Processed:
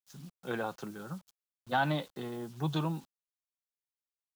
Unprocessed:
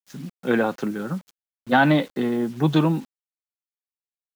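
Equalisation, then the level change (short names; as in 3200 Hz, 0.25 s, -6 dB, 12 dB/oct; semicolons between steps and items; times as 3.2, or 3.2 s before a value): ten-band EQ 250 Hz -12 dB, 500 Hz -5 dB, 2000 Hz -9 dB; -6.5 dB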